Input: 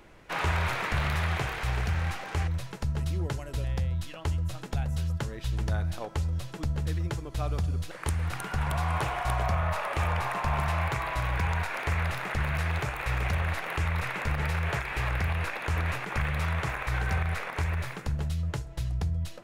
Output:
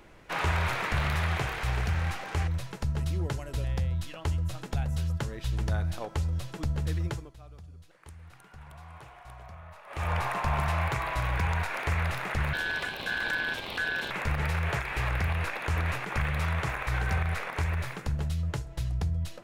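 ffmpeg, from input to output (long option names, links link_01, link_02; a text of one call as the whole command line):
ffmpeg -i in.wav -filter_complex "[0:a]asettb=1/sr,asplit=3[link_01][link_02][link_03];[link_01]atrim=end=12.534[link_04];[link_02]atrim=start=12.53:end=14.11,asetpts=PTS-STARTPTS,afade=type=in:duration=0.004:curve=qsin,afade=type=out:start_time=1.576:duration=0.004:curve=qsin,aeval=exprs='val(0)*sin(2*PI*1600*n/s)':channel_layout=same[link_05];[link_03]atrim=start=14.106[link_06];[link_04][link_05]acrossfade=duration=0.004:curve1=hsin:curve2=qsin[link_07];[link_07][link_06]acrossfade=duration=0.004:curve1=qsin:curve2=hsin,asplit=3[link_08][link_09][link_10];[link_08]atrim=end=7.36,asetpts=PTS-STARTPTS,afade=type=out:start_time=7.08:duration=0.28:silence=0.112202[link_11];[link_09]atrim=start=7.36:end=9.86,asetpts=PTS-STARTPTS,volume=-19dB[link_12];[link_10]atrim=start=9.86,asetpts=PTS-STARTPTS,afade=type=in:duration=0.28:silence=0.112202[link_13];[link_11][link_12][link_13]concat=n=3:v=0:a=1" out.wav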